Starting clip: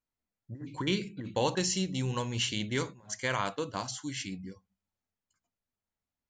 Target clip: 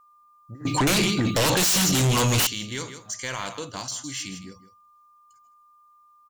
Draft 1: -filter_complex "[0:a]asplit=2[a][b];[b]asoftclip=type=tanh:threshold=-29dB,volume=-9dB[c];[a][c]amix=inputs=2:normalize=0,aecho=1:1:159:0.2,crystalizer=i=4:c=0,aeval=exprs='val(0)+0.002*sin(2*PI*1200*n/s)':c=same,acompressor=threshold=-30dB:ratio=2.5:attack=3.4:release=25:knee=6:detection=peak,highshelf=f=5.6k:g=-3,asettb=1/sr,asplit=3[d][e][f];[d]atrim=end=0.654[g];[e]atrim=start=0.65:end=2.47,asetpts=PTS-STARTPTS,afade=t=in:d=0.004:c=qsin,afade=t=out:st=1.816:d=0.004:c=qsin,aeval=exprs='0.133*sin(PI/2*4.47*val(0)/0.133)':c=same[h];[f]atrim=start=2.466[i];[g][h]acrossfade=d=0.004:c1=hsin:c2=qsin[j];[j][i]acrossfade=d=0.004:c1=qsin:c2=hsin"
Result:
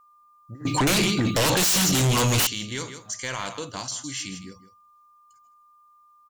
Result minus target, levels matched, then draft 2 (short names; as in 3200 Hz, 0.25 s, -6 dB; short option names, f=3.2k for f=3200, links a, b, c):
soft clip: distortion -6 dB
-filter_complex "[0:a]asplit=2[a][b];[b]asoftclip=type=tanh:threshold=-38.5dB,volume=-9dB[c];[a][c]amix=inputs=2:normalize=0,aecho=1:1:159:0.2,crystalizer=i=4:c=0,aeval=exprs='val(0)+0.002*sin(2*PI*1200*n/s)':c=same,acompressor=threshold=-30dB:ratio=2.5:attack=3.4:release=25:knee=6:detection=peak,highshelf=f=5.6k:g=-3,asettb=1/sr,asplit=3[d][e][f];[d]atrim=end=0.654[g];[e]atrim=start=0.65:end=2.47,asetpts=PTS-STARTPTS,afade=t=in:d=0.004:c=qsin,afade=t=out:st=1.816:d=0.004:c=qsin,aeval=exprs='0.133*sin(PI/2*4.47*val(0)/0.133)':c=same[h];[f]atrim=start=2.466[i];[g][h]acrossfade=d=0.004:c1=hsin:c2=qsin[j];[j][i]acrossfade=d=0.004:c1=qsin:c2=hsin"